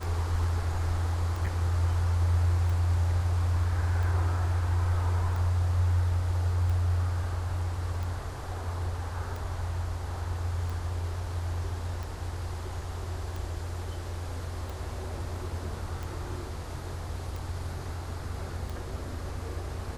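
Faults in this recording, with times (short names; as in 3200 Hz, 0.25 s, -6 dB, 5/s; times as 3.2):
tick 45 rpm
1.46–1.47 gap 5 ms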